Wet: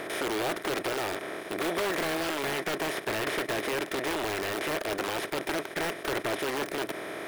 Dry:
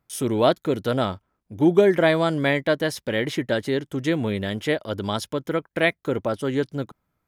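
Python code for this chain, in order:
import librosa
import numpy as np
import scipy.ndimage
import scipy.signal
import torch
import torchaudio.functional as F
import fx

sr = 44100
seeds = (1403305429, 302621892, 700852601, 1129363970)

y = fx.bin_compress(x, sr, power=0.2)
y = librosa.effects.preemphasis(y, coef=0.8, zi=[0.0])
y = (np.mod(10.0 ** (17.5 / 20.0) * y + 1.0, 2.0) - 1.0) / 10.0 ** (17.5 / 20.0)
y = fx.bass_treble(y, sr, bass_db=-8, treble_db=-13)
y = y * 10.0 ** (-2.0 / 20.0)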